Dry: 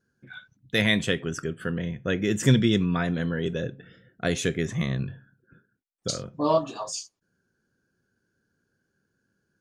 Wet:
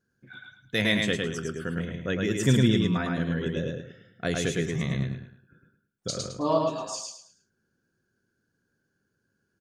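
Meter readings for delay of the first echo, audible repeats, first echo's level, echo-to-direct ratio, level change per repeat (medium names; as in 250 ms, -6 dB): 107 ms, 4, -3.0 dB, -2.5 dB, -10.0 dB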